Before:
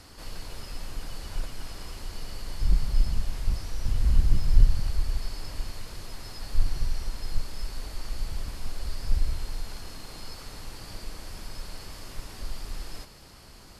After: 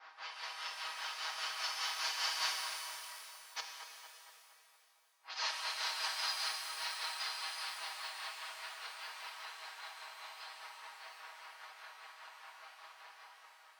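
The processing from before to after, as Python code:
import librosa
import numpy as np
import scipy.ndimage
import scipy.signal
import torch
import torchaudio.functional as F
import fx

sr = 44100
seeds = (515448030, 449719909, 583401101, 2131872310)

p1 = fx.cvsd(x, sr, bps=32000)
p2 = fx.doppler_pass(p1, sr, speed_mps=14, closest_m=14.0, pass_at_s=3.92)
p3 = fx.gate_flip(p2, sr, shuts_db=-23.0, range_db=-41)
p4 = scipy.signal.sosfilt(scipy.signal.butter(4, 850.0, 'highpass', fs=sr, output='sos'), p3)
p5 = p4 + 0.8 * np.pad(p4, (int(6.3 * sr / 1000.0), 0))[:len(p4)]
p6 = fx.env_lowpass(p5, sr, base_hz=1200.0, full_db=-46.0)
p7 = fx.tremolo_shape(p6, sr, shape='triangle', hz=5.0, depth_pct=95)
p8 = p7 + fx.echo_filtered(p7, sr, ms=231, feedback_pct=64, hz=2500.0, wet_db=-9, dry=0)
p9 = fx.rev_shimmer(p8, sr, seeds[0], rt60_s=2.6, semitones=12, shimmer_db=-8, drr_db=1.5)
y = F.gain(torch.from_numpy(p9), 16.0).numpy()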